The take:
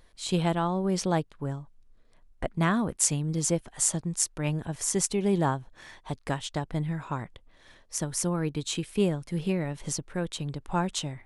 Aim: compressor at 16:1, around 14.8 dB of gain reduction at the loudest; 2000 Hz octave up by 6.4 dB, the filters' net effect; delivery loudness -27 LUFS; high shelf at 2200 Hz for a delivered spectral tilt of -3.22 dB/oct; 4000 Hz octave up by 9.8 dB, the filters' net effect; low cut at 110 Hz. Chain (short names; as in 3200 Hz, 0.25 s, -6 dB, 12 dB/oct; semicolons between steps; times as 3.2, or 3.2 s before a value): HPF 110 Hz; bell 2000 Hz +3 dB; high shelf 2200 Hz +8 dB; bell 4000 Hz +4 dB; compressor 16:1, threshold -26 dBFS; gain +4.5 dB